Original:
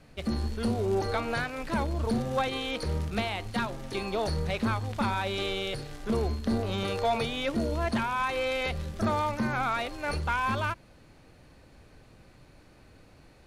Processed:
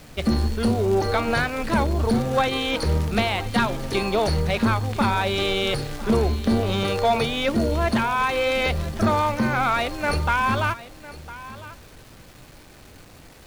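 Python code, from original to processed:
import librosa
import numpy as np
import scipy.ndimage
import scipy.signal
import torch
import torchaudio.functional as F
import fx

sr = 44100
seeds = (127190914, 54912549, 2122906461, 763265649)

p1 = fx.rider(x, sr, range_db=10, speed_s=0.5)
p2 = x + (p1 * librosa.db_to_amplitude(3.0))
p3 = fx.quant_dither(p2, sr, seeds[0], bits=8, dither='none')
y = p3 + 10.0 ** (-17.0 / 20.0) * np.pad(p3, (int(1005 * sr / 1000.0), 0))[:len(p3)]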